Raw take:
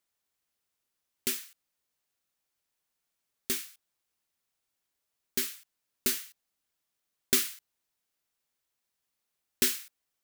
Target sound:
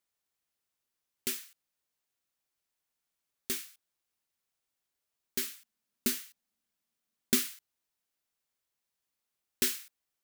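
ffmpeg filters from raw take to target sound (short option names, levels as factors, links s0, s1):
-filter_complex "[0:a]asettb=1/sr,asplit=3[s0][s1][s2];[s0]atrim=end=5.474[s3];[s1]atrim=start=5.47:end=7.55,asetpts=PTS-STARTPTS,afade=t=in:d=0.004:c=qsin,afade=t=out:st=2.076:d=0.004:c=qsin,equalizer=f=220:w=3.4:g=12.5[s4];[s2]atrim=start=7.546[s5];[s3][s4]acrossfade=d=0.004:c1=hsin:c2=qsin[s6];[s6][s5]acrossfade=d=0.004:c1=qsin:c2=hsin,volume=0.708"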